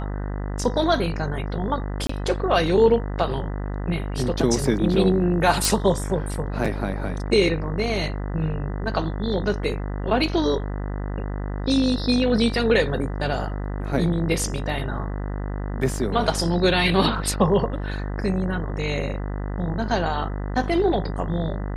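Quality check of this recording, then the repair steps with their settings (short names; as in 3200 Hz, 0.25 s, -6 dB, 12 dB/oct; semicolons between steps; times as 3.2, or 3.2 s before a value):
buzz 50 Hz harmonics 40 -28 dBFS
2.07–2.09 gap 24 ms
5.65 pop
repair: de-click; de-hum 50 Hz, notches 40; interpolate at 2.07, 24 ms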